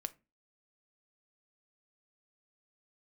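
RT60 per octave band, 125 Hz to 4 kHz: 0.35 s, 0.40 s, 0.30 s, 0.25 s, 0.25 s, 0.15 s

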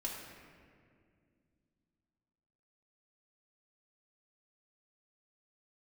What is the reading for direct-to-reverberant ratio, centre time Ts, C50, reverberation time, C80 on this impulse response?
-4.0 dB, 80 ms, 2.0 dB, 2.2 s, 3.5 dB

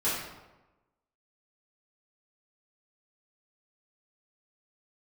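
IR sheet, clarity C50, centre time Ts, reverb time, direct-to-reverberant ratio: 0.5 dB, 67 ms, 1.1 s, -12.5 dB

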